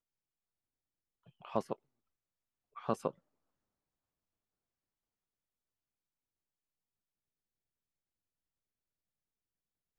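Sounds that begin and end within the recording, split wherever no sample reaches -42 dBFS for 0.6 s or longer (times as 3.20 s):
1.45–1.73 s
2.77–3.10 s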